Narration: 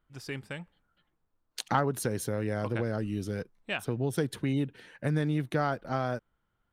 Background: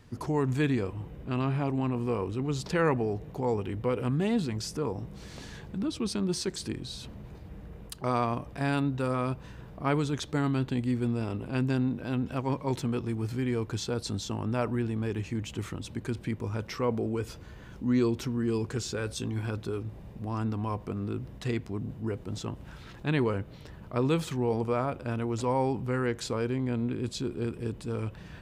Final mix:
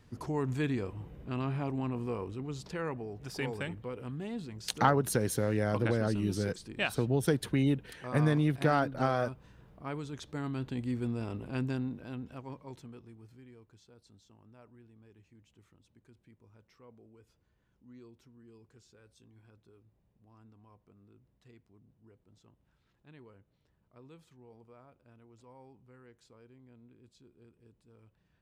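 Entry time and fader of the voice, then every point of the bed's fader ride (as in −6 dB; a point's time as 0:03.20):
3.10 s, +1.5 dB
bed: 0:01.98 −5 dB
0:02.95 −11.5 dB
0:10.04 −11.5 dB
0:10.96 −5 dB
0:11.61 −5 dB
0:13.78 −28 dB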